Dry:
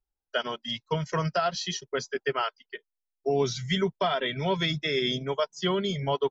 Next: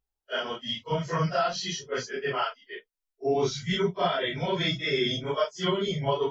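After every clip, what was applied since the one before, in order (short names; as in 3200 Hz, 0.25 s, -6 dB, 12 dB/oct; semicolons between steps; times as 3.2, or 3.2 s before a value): phase scrambler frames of 0.1 s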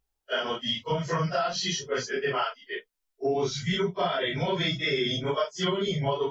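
compressor 3:1, threshold -31 dBFS, peak gain reduction 8.5 dB; gain +5.5 dB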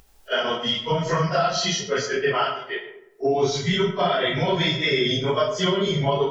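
upward compressor, threshold -45 dBFS; digital reverb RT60 0.91 s, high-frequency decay 0.45×, pre-delay 25 ms, DRR 7.5 dB; gain +5 dB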